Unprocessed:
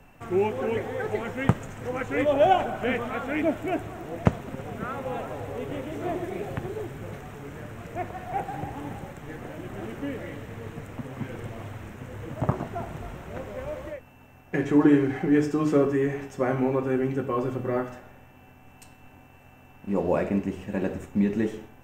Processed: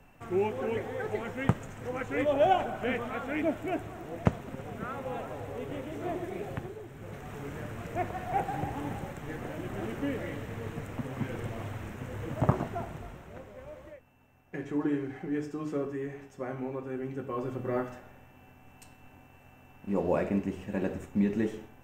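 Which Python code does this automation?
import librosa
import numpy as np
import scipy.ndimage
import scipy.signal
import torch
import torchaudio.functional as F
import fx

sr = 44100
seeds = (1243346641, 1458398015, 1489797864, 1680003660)

y = fx.gain(x, sr, db=fx.line((6.58, -4.5), (6.81, -11.0), (7.37, 0.0), (12.56, 0.0), (13.53, -11.5), (16.91, -11.5), (17.8, -3.5)))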